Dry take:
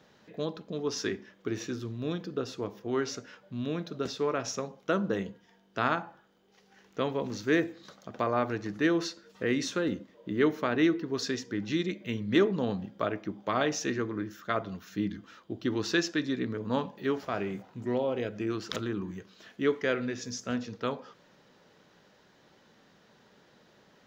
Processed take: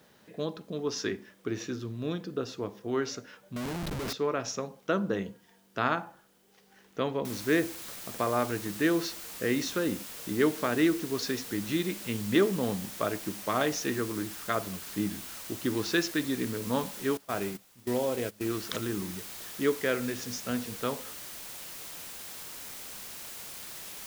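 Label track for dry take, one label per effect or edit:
3.560000	4.130000	Schmitt trigger flips at -43.5 dBFS
7.250000	7.250000	noise floor step -69 dB -43 dB
17.170000	18.490000	gate -35 dBFS, range -18 dB

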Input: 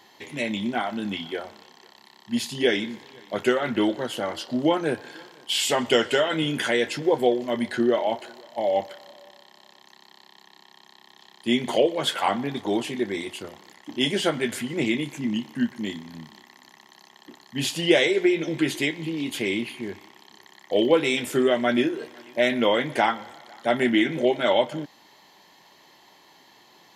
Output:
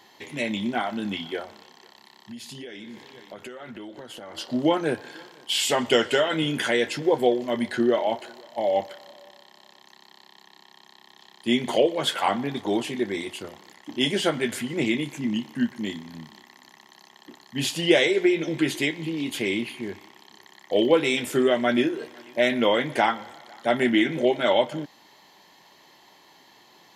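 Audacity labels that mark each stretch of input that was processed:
1.440000	4.380000	compressor 10:1, threshold -36 dBFS

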